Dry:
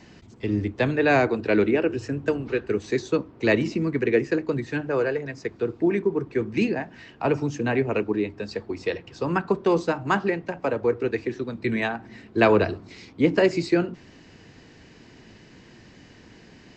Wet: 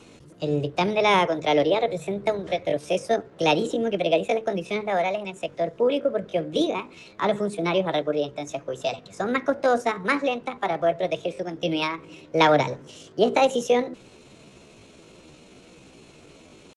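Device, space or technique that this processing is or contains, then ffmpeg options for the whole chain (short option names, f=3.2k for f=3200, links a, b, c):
chipmunk voice: -af "asetrate=62367,aresample=44100,atempo=0.707107"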